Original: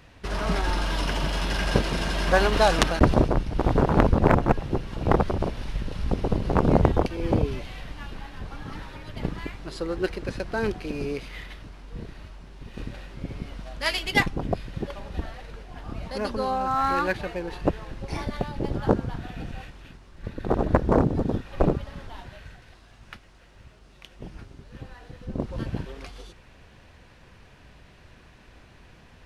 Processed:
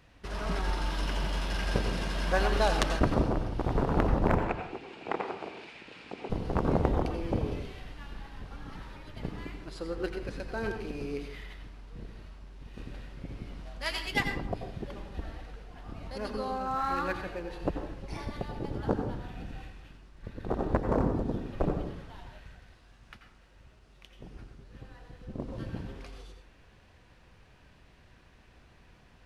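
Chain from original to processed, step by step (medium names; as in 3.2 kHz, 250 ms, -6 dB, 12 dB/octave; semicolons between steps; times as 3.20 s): 4.38–6.30 s: cabinet simulation 390–8000 Hz, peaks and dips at 560 Hz -6 dB, 1.1 kHz -3 dB, 2.4 kHz +10 dB, 5.8 kHz -6 dB; on a send: reverberation RT60 0.60 s, pre-delay 81 ms, DRR 5.5 dB; on the sum: trim -8 dB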